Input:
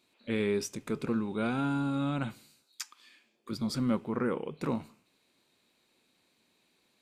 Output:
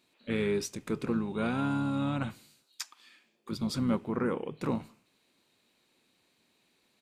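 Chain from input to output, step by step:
pitch-shifted copies added −5 semitones −11 dB

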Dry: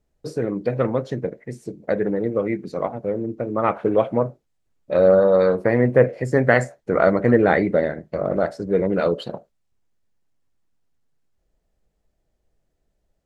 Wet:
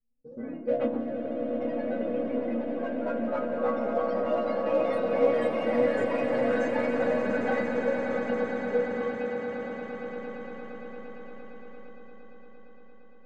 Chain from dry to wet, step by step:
pitch shifter gated in a rhythm −3 semitones, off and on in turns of 309 ms
low-pass that shuts in the quiet parts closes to 370 Hz, open at −13.5 dBFS
stiff-string resonator 230 Hz, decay 0.37 s, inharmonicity 0.03
in parallel at −8.5 dB: soft clipping −35 dBFS, distortion −6 dB
on the sum: echo that builds up and dies away 115 ms, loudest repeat 8, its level −10 dB
delay with pitch and tempo change per echo 86 ms, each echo +2 semitones, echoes 3
on a send at −15.5 dB: convolution reverb RT60 5.1 s, pre-delay 37 ms

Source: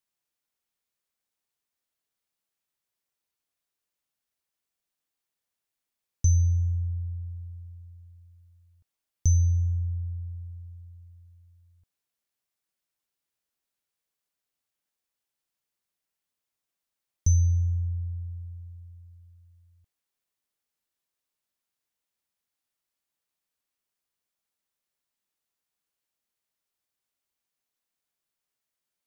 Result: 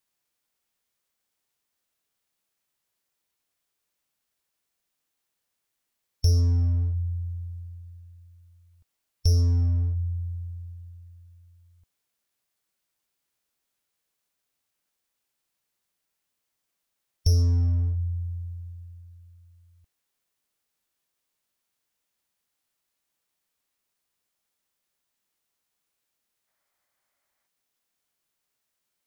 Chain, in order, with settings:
gain on a spectral selection 0:26.48–0:27.46, 520–2,600 Hz +7 dB
in parallel at −4 dB: wave folding −27 dBFS
on the sum: formants moved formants −2 semitones
level +1.5 dB

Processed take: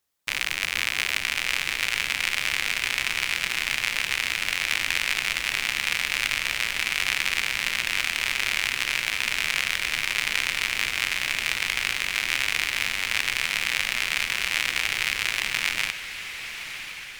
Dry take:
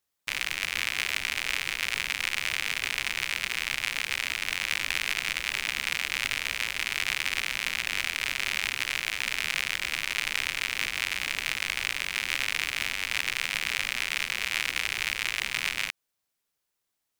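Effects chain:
feedback delay with all-pass diffusion 1,044 ms, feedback 55%, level −10 dB
level +3.5 dB

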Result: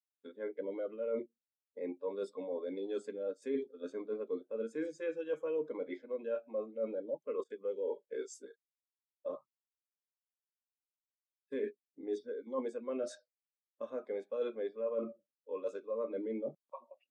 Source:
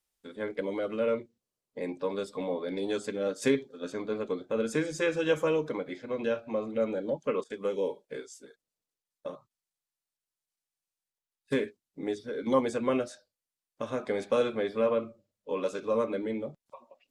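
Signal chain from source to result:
high-pass filter 250 Hz 12 dB per octave
reversed playback
downward compressor 6 to 1, threshold −42 dBFS, peak gain reduction 20 dB
reversed playback
every bin expanded away from the loudest bin 1.5 to 1
level +5 dB

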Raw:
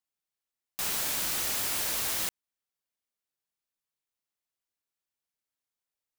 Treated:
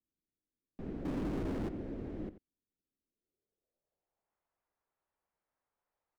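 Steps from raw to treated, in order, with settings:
octave-band graphic EQ 125/250/1,000/2,000 Hz −5/−5/−7/+3 dB
in parallel at +3 dB: brickwall limiter −26 dBFS, peak gain reduction 7.5 dB
on the sum: slap from a distant wall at 15 metres, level −14 dB
low-pass filter sweep 280 Hz → 990 Hz, 0:03.02–0:04.37
0:01.05–0:01.69: power curve on the samples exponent 0.5
level +2.5 dB

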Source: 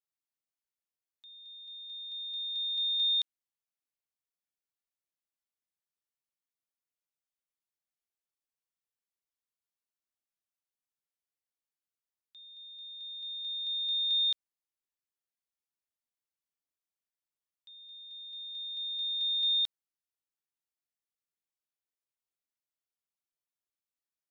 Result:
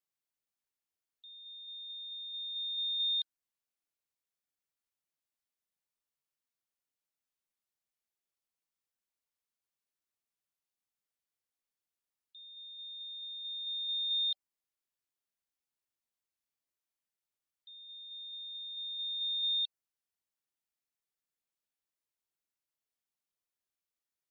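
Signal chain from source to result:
dynamic equaliser 3,500 Hz, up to −4 dB, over −43 dBFS, Q 2.4
gate on every frequency bin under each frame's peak −30 dB strong

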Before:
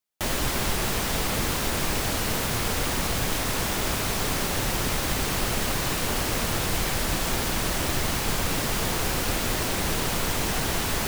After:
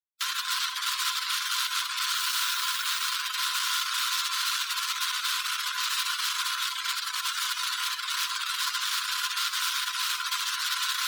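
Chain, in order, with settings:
fuzz pedal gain 46 dB, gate −47 dBFS
gate on every frequency bin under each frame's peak −20 dB strong
Chebyshev high-pass with heavy ripple 990 Hz, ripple 9 dB
0:02.13–0:03.09: background noise blue −35 dBFS
on a send: delay with a high-pass on its return 64 ms, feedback 50%, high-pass 2,000 Hz, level −10 dB
on the sum: level −5.5 dB

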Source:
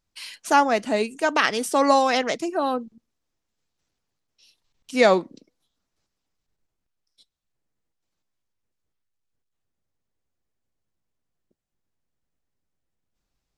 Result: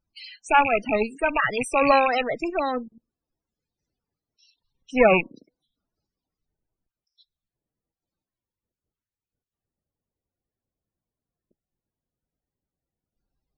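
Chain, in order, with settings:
loose part that buzzes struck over −33 dBFS, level −9 dBFS
harmonic generator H 6 −17 dB, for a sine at −1.5 dBFS
spectral peaks only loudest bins 32

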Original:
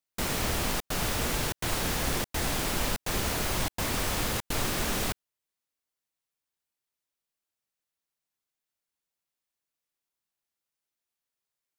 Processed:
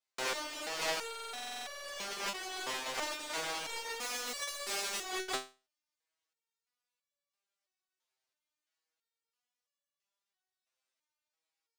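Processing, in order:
delay that plays each chunk backwards 153 ms, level −4 dB
compressor whose output falls as the input rises −33 dBFS, ratio −0.5
0:04.00–0:05.01: high-shelf EQ 4,700 Hz +10.5 dB
in parallel at −4.5 dB: log-companded quantiser 2 bits
on the sum: three-way crossover with the lows and the highs turned down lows −23 dB, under 340 Hz, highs −17 dB, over 7,900 Hz
buffer that repeats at 0:01.05, samples 2,048, times 16
step-sequenced resonator 3 Hz 130–570 Hz
level +6.5 dB

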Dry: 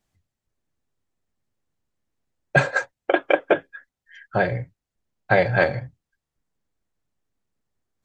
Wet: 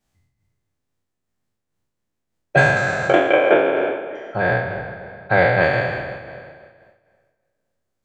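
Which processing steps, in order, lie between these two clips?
peak hold with a decay on every bin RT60 1.73 s
0:03.30–0:05.64: high-shelf EQ 7,200 Hz −9 dB
tape delay 257 ms, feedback 38%, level −10 dB, low-pass 1,600 Hz
amplitude modulation by smooth noise, depth 65%
level +1.5 dB

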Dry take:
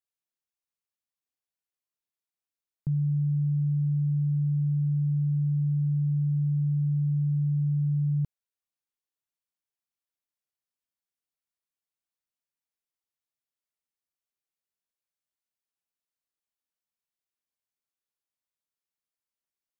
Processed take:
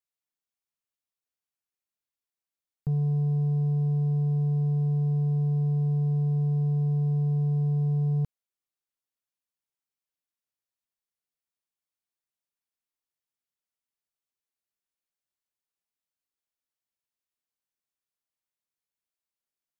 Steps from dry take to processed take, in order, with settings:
leveller curve on the samples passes 1

